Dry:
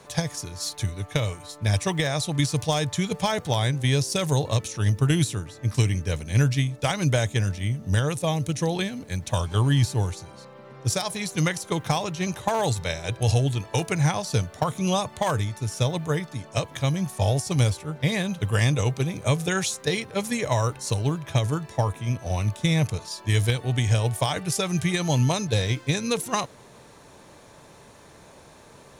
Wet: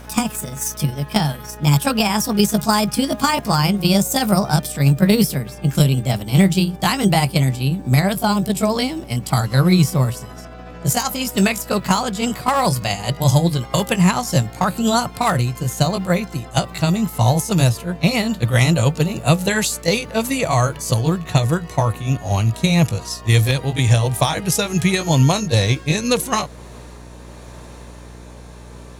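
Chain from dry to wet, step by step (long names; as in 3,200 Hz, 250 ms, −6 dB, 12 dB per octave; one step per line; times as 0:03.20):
pitch glide at a constant tempo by +6.5 semitones ending unshifted
hum with harmonics 60 Hz, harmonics 9, −47 dBFS −6 dB per octave
level +8 dB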